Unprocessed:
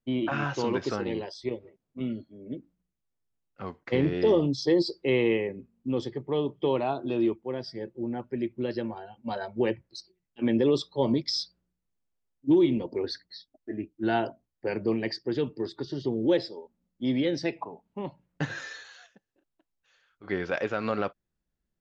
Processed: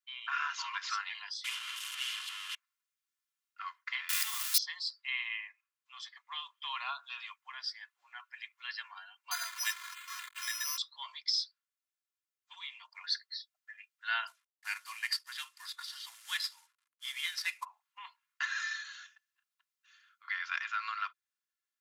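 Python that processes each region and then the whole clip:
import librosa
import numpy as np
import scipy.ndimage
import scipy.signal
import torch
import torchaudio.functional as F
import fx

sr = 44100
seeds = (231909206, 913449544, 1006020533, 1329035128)

y = fx.chain(x, sr, fx.delta_mod(bps=64000, step_db=-36.5),
    fx.peak_eq(hz=3000.0, db=14.0, octaves=0.49), at=(1.44, 2.55))
y = fx.chain(y, sr, fx.crossing_spikes(level_db=-20.5),
    fx.env_flatten(amount_pct=70), at=(4.09, 4.58))
y = fx.chain(y, sr, fx.delta_mod(bps=64000, step_db=-34.0),
    fx.comb(ms=2.9, depth=0.95),
    fx.resample_bad(factor=8, down='filtered', up='hold'), at=(9.31, 10.78))
y = fx.chain(y, sr, fx.cvsd(bps=64000),
    fx.highpass(hz=510.0, slope=12), at=(14.27, 17.65))
y = scipy.signal.sosfilt(scipy.signal.butter(8, 1100.0, 'highpass', fs=sr, output='sos'), y)
y = y + 0.49 * np.pad(y, (int(2.9 * sr / 1000.0), 0))[:len(y)]
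y = fx.rider(y, sr, range_db=3, speed_s=0.5)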